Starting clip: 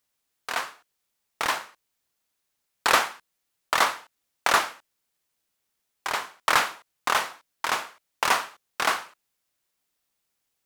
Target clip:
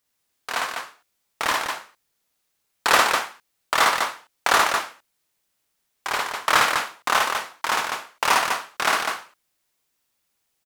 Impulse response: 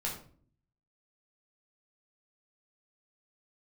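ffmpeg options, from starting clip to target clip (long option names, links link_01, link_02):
-af "aecho=1:1:55.39|201.2:0.891|0.631,volume=1dB"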